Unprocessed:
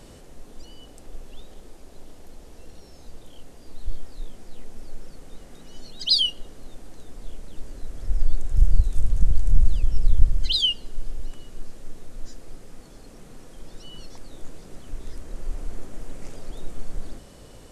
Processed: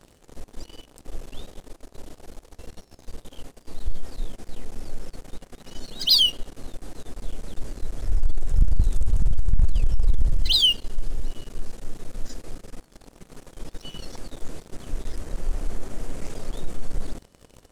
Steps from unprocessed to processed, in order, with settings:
leveller curve on the samples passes 3
level −7 dB

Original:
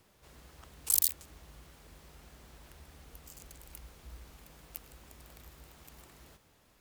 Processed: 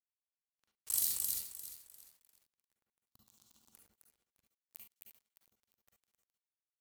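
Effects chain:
loudspeakers that aren't time-aligned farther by 13 metres −6 dB, 90 metres −3 dB
dead-zone distortion −41.5 dBFS
0:03.07–0:03.72: octave-band graphic EQ 125/250/500/1,000/2,000/4,000 Hz +5/+8/−6/+9/−11/+9 dB
convolution reverb, pre-delay 40 ms, DRR 1.5 dB
feedback echo at a low word length 349 ms, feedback 35%, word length 8 bits, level −11.5 dB
level −8 dB

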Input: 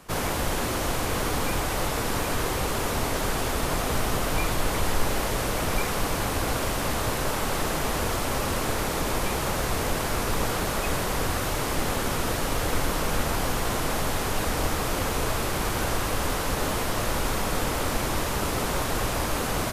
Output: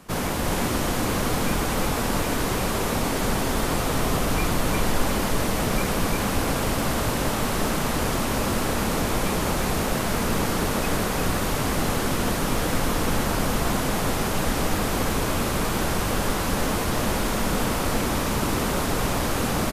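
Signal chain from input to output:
parametric band 210 Hz +6.5 dB 0.96 octaves
single-tap delay 351 ms −4 dB

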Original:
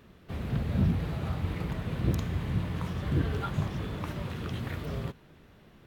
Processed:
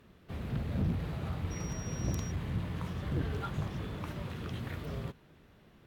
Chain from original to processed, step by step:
0:01.50–0:02.30: steady tone 5,700 Hz −43 dBFS
asymmetric clip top −26.5 dBFS
level −4 dB

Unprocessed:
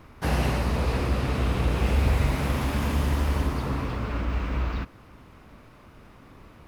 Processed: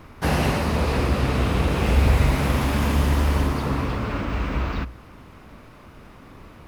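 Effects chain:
mains-hum notches 60/120 Hz
level +5 dB

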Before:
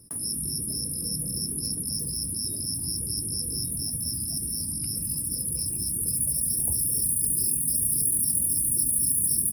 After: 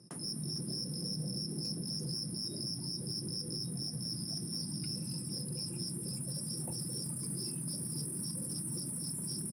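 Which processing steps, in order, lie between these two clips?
Chebyshev band-pass filter 130–7,000 Hz, order 3
comb filter 5.6 ms, depth 37%
brickwall limiter −27 dBFS, peak gain reduction 6.5 dB
soft clipping −30 dBFS, distortion −20 dB
on a send: single-tap delay 452 ms −16 dB

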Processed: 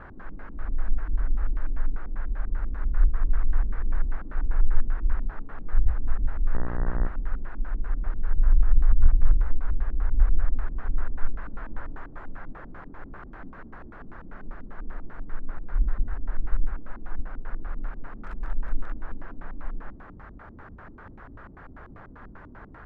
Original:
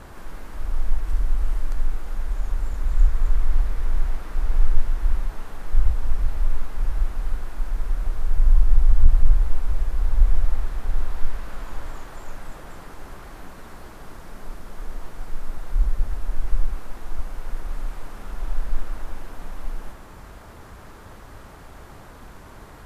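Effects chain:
0:18.24–0:18.94: spike at every zero crossing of −22.5 dBFS
auto-filter low-pass square 5.1 Hz 270–1,600 Hz
0:06.53–0:07.07: hum with harmonics 60 Hz, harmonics 32, −29 dBFS −5 dB per octave
level −3.5 dB

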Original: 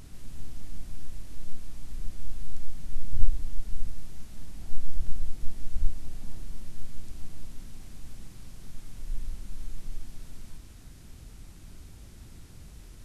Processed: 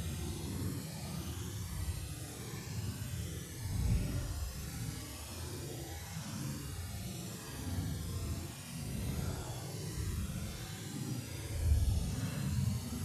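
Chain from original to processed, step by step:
harmonic-percussive split with one part muted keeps percussive
extreme stretch with random phases 7×, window 0.10 s, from 0:03.31
level +12.5 dB

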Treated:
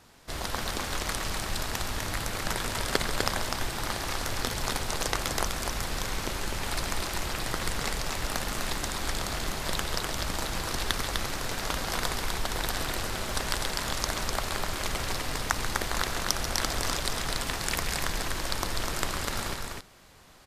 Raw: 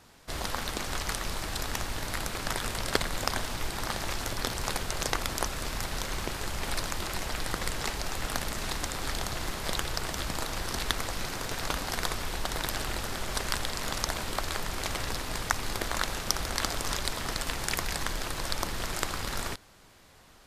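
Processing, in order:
loudspeakers that aren't time-aligned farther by 47 metres −11 dB, 86 metres −4 dB

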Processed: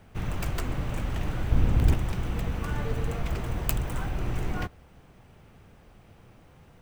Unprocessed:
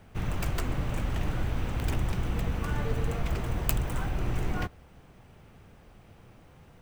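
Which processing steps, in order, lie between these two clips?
0:01.51–0:01.94: low-shelf EQ 410 Hz +9.5 dB

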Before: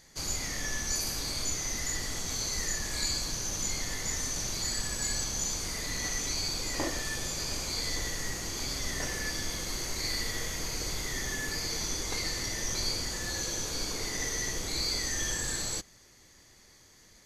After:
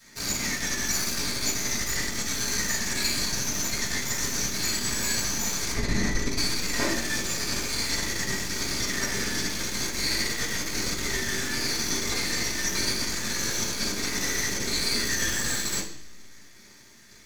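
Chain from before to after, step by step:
0:05.73–0:06.38: spectral tilt −2.5 dB per octave
half-wave rectification
convolution reverb RT60 0.65 s, pre-delay 3 ms, DRR −4.5 dB
level +5.5 dB

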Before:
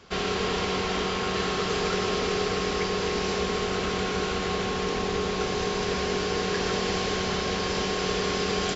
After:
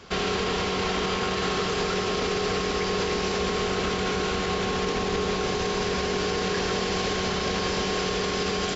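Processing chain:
brickwall limiter −22.5 dBFS, peak gain reduction 7.5 dB
level +5 dB

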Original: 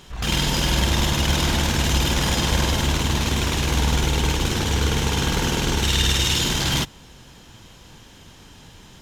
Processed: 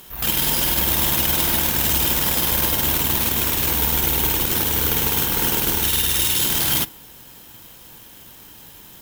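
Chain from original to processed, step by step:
low-shelf EQ 150 Hz −8.5 dB
brickwall limiter −14 dBFS, peak gain reduction 6 dB
on a send at −18 dB: convolution reverb RT60 0.45 s, pre-delay 3 ms
on the sum: bad sample-rate conversion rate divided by 3×, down none, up zero stuff

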